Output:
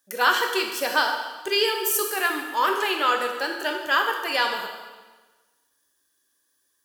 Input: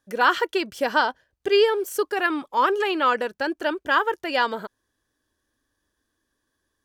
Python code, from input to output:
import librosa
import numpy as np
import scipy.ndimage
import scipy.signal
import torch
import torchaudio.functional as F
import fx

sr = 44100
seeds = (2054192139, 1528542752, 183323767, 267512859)

y = fx.riaa(x, sr, side='recording')
y = fx.rev_plate(y, sr, seeds[0], rt60_s=1.3, hf_ratio=0.95, predelay_ms=0, drr_db=2.0)
y = y * 10.0 ** (-3.0 / 20.0)